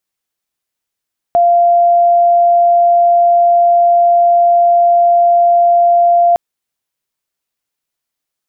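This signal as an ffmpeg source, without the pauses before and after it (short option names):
-f lavfi -i "aevalsrc='0.501*sin(2*PI*693*t)':d=5.01:s=44100"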